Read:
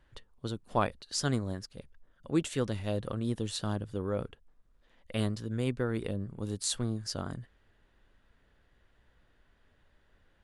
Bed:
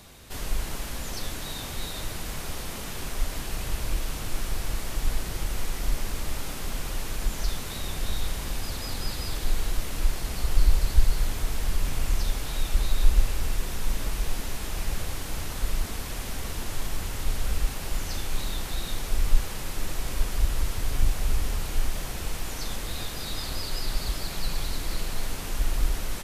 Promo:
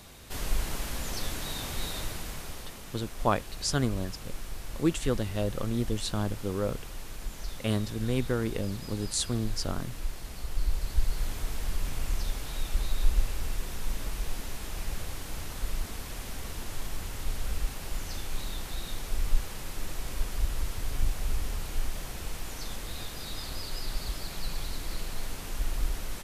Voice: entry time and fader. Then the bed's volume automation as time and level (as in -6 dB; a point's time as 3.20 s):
2.50 s, +2.5 dB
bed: 1.94 s -0.5 dB
2.82 s -9.5 dB
10.55 s -9.5 dB
11.32 s -5 dB